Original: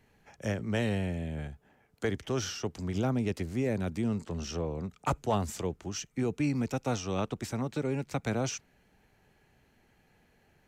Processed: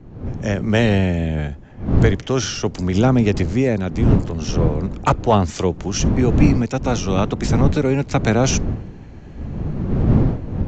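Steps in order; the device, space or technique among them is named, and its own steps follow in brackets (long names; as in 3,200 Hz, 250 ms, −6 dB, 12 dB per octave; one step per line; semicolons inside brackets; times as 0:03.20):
0:05.09–0:05.56: high-frequency loss of the air 86 metres
smartphone video outdoors (wind on the microphone 180 Hz −33 dBFS; automatic gain control gain up to 15 dB; AAC 64 kbit/s 16,000 Hz)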